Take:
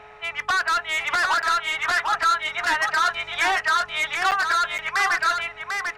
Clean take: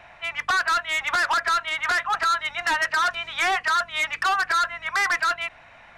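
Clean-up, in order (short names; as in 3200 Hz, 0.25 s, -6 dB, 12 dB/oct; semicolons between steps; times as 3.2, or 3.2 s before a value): de-hum 425 Hz, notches 3; interpolate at 1.42/4.31/4.78, 8 ms; inverse comb 0.746 s -5 dB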